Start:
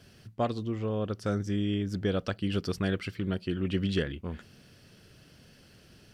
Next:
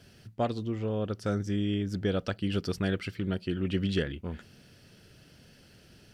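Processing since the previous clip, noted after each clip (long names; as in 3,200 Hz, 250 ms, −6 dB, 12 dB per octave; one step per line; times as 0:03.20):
notch filter 1,100 Hz, Q 12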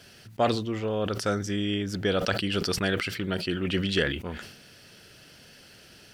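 low-shelf EQ 370 Hz −11.5 dB
level that may fall only so fast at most 67 dB per second
level +8.5 dB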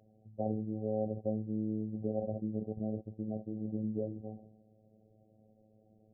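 Chebyshev low-pass with heavy ripple 770 Hz, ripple 6 dB
phases set to zero 108 Hz
level −3 dB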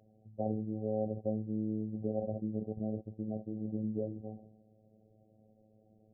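no processing that can be heard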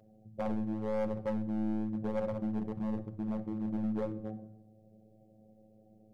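gain into a clipping stage and back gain 33.5 dB
rectangular room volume 2,600 cubic metres, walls furnished, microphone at 0.92 metres
level +3 dB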